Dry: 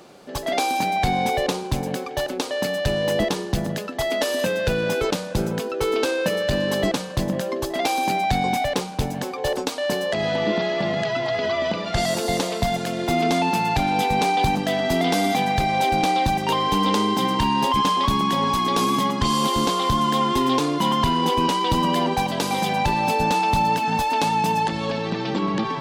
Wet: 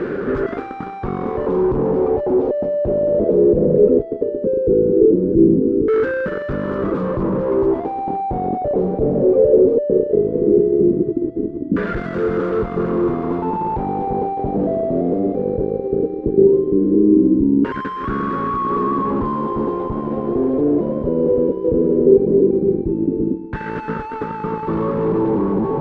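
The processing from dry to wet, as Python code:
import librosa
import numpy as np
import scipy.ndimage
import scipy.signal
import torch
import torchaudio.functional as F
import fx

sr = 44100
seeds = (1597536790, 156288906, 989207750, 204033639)

y = fx.fuzz(x, sr, gain_db=48.0, gate_db=-53.0)
y = fx.filter_lfo_lowpass(y, sr, shape='saw_down', hz=0.17, low_hz=280.0, high_hz=1600.0, q=4.8)
y = fx.low_shelf_res(y, sr, hz=550.0, db=9.0, q=3.0)
y = y * 10.0 ** (-15.0 / 20.0)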